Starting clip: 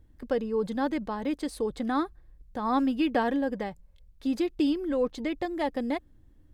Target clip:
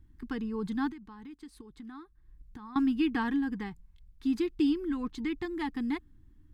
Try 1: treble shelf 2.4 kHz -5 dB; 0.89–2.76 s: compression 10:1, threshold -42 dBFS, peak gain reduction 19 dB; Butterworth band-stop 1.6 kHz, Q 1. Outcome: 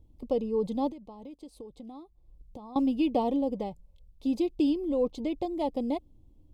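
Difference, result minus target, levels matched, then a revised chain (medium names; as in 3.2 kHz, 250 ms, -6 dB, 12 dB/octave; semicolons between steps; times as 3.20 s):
2 kHz band -14.5 dB
treble shelf 2.4 kHz -5 dB; 0.89–2.76 s: compression 10:1, threshold -42 dBFS, peak gain reduction 19 dB; Butterworth band-stop 580 Hz, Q 1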